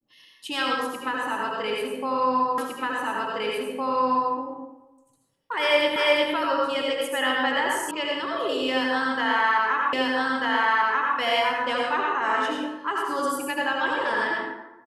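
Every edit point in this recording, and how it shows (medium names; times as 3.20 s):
2.58 s: repeat of the last 1.76 s
5.96 s: repeat of the last 0.36 s
7.91 s: sound stops dead
9.93 s: repeat of the last 1.24 s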